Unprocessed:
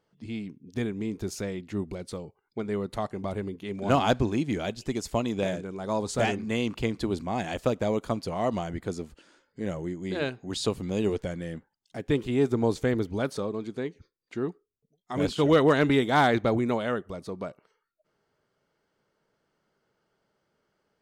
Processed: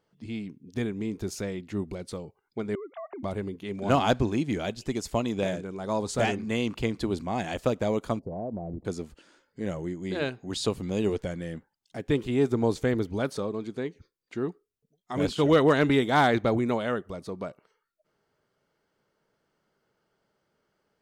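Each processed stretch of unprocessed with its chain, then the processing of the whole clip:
2.75–3.23 s: formants replaced by sine waves + compression 3:1, threshold -38 dBFS
8.19–8.85 s: inverse Chebyshev low-pass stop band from 1.4 kHz + compression, threshold -30 dBFS
whole clip: none

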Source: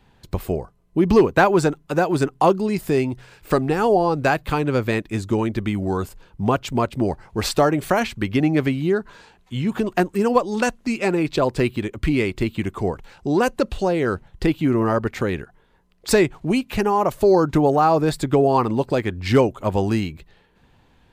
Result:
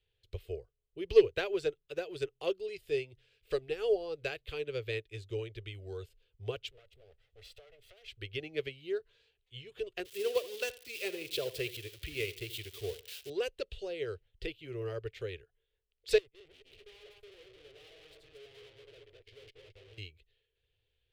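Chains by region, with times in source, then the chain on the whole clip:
6.70–8.08 s: comb filter that takes the minimum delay 1.5 ms + compression 3:1, threshold -34 dBFS
10.05–13.30 s: zero-crossing glitches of -16.5 dBFS + high-pass 62 Hz + filtered feedback delay 77 ms, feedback 33%, low-pass 3.4 kHz, level -11.5 dB
16.18–19.98 s: backward echo that repeats 111 ms, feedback 63%, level -2.5 dB + gate -21 dBFS, range -30 dB + valve stage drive 32 dB, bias 0.8
whole clip: FFT filter 110 Hz 0 dB, 220 Hz -29 dB, 440 Hz +4 dB, 900 Hz -19 dB, 3.1 kHz +9 dB, 6.8 kHz -5 dB; upward expansion 1.5:1, over -38 dBFS; trim -7.5 dB

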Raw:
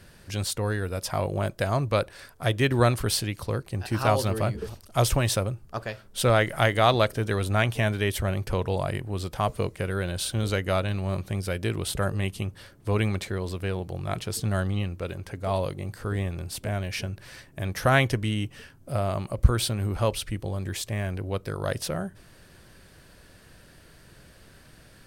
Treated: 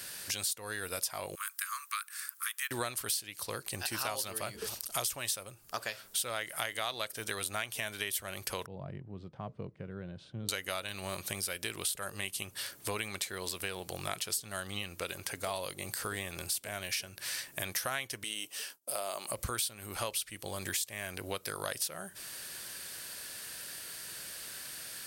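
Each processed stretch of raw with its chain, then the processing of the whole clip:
1.35–2.71 s: steep high-pass 1.1 kHz 96 dB/octave + peaking EQ 3.7 kHz -13.5 dB 1.9 oct + companded quantiser 8-bit
8.66–10.49 s: band-pass filter 150 Hz, Q 1.7 + distance through air 120 m
18.24–19.28 s: high-pass 370 Hz + expander -55 dBFS + peaking EQ 1.8 kHz -6.5 dB 1.4 oct
whole clip: tilt EQ +4.5 dB/octave; compression 6:1, threshold -37 dBFS; trim +3.5 dB

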